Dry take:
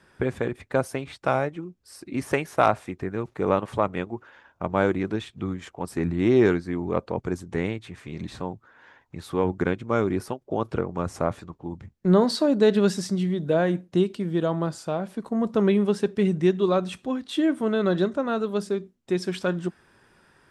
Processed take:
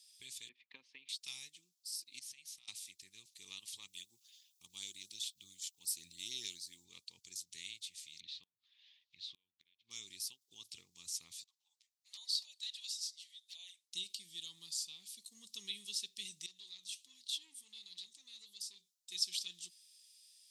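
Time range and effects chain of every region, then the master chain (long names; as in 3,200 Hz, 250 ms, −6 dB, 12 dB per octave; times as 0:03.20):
0:00.49–0:01.09: transient designer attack +10 dB, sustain −1 dB + downward compressor 2 to 1, threshold −22 dBFS + loudspeaker in its box 240–2,400 Hz, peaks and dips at 250 Hz +7 dB, 500 Hz +6 dB, 980 Hz +8 dB, 1,600 Hz +5 dB
0:02.19–0:02.68: parametric band 400 Hz −11.5 dB 0.66 octaves + downward compressor 8 to 1, threshold −36 dBFS + low-pass filter 2,200 Hz 6 dB per octave
0:03.88–0:06.85: high-shelf EQ 10,000 Hz +11.5 dB + auto-filter notch saw up 7.4 Hz 960–2,900 Hz
0:08.20–0:09.91: low-pass filter 3,600 Hz 24 dB per octave + gate with flip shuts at −17 dBFS, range −31 dB + one half of a high-frequency compander encoder only
0:11.44–0:13.93: Butterworth high-pass 570 Hz 72 dB per octave + high-shelf EQ 2,700 Hz −8 dB + flanger swept by the level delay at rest 10.7 ms, full sweep at −22.5 dBFS
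0:16.46–0:19.12: downward compressor 2.5 to 1, threshold −24 dBFS + flanger 1.3 Hz, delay 4.3 ms, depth 8.1 ms, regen +66% + saturating transformer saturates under 880 Hz
whole clip: inverse Chebyshev high-pass filter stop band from 1,600 Hz, stop band 50 dB; dynamic equaliser 8,700 Hz, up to −6 dB, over −56 dBFS, Q 0.78; level +8.5 dB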